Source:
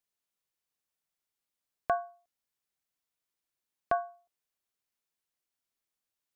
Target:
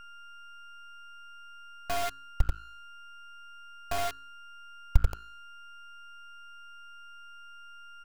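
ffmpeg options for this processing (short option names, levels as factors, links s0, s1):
-filter_complex "[0:a]asplit=2[s0][s1];[s1]adelay=69,lowpass=f=1600:p=1,volume=0.562,asplit=2[s2][s3];[s3]adelay=69,lowpass=f=1600:p=1,volume=0.32,asplit=2[s4][s5];[s5]adelay=69,lowpass=f=1600:p=1,volume=0.32,asplit=2[s6][s7];[s7]adelay=69,lowpass=f=1600:p=1,volume=0.32[s8];[s0][s2][s4][s6][s8]amix=inputs=5:normalize=0,acrossover=split=200[s9][s10];[s9]asetrate=34839,aresample=44100[s11];[s10]asoftclip=type=tanh:threshold=0.0251[s12];[s11][s12]amix=inputs=2:normalize=0,alimiter=level_in=3.76:limit=0.0631:level=0:latency=1:release=277,volume=0.266,asubboost=boost=4:cutoff=170,acrusher=bits=6:mix=0:aa=0.000001,aeval=exprs='val(0)+0.002*sin(2*PI*1400*n/s)':c=same,bandreject=f=53.95:t=h:w=4,bandreject=f=107.9:t=h:w=4,bandreject=f=161.85:t=h:w=4,bandreject=f=215.8:t=h:w=4,bandreject=f=269.75:t=h:w=4,bandreject=f=323.7:t=h:w=4,bandreject=f=377.65:t=h:w=4,bandreject=f=431.6:t=h:w=4,asubboost=boost=6:cutoff=77,aeval=exprs='max(val(0),0)':c=same,volume=3.98"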